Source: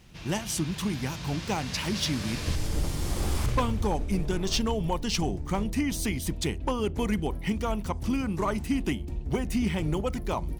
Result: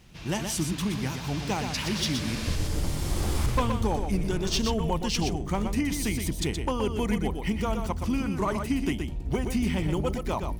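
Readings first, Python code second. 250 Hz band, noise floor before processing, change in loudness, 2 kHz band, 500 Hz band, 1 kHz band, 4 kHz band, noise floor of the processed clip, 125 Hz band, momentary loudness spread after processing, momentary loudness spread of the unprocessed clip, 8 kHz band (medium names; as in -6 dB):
+1.0 dB, -37 dBFS, +1.0 dB, +1.0 dB, +1.0 dB, +1.0 dB, +1.0 dB, -35 dBFS, +1.0 dB, 4 LU, 4 LU, +1.0 dB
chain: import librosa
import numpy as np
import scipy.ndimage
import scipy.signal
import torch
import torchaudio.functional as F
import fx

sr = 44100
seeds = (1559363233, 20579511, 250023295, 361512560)

y = x + 10.0 ** (-6.5 / 20.0) * np.pad(x, (int(122 * sr / 1000.0), 0))[:len(x)]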